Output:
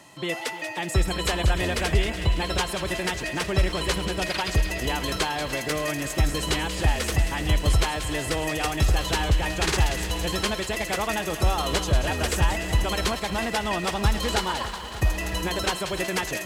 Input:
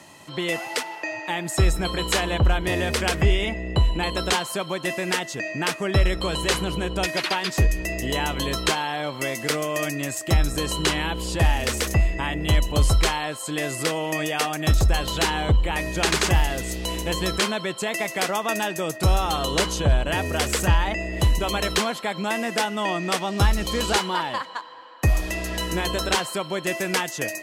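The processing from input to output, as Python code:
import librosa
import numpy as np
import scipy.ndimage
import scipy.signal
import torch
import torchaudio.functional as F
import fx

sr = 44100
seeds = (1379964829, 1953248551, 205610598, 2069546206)

y = fx.stretch_vocoder(x, sr, factor=0.6)
y = fx.echo_wet_highpass(y, sr, ms=185, feedback_pct=57, hz=1600.0, wet_db=-8.5)
y = fx.echo_crushed(y, sr, ms=299, feedback_pct=80, bits=8, wet_db=-14.5)
y = y * librosa.db_to_amplitude(-1.5)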